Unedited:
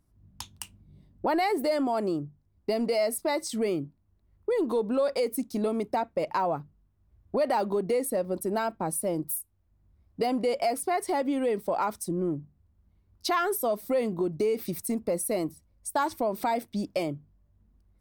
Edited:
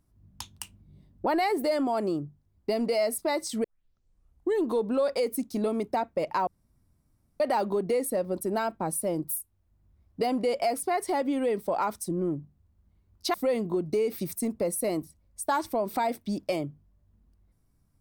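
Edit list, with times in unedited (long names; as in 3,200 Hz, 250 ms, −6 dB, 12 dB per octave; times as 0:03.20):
0:03.64: tape start 1.00 s
0:06.47–0:07.40: fill with room tone
0:13.34–0:13.81: remove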